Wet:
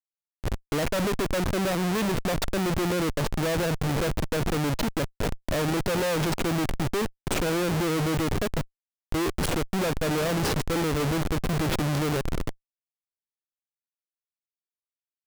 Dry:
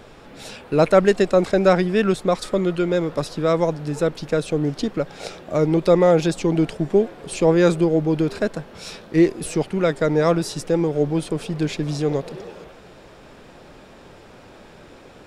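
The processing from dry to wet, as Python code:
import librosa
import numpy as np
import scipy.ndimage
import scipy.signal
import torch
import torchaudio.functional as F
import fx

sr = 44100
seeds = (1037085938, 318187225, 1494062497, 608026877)

y = fx.lowpass(x, sr, hz=1100.0, slope=24, at=(8.69, 9.3), fade=0.02)
y = fx.schmitt(y, sr, flips_db=-28.0)
y = y * 10.0 ** (-4.0 / 20.0)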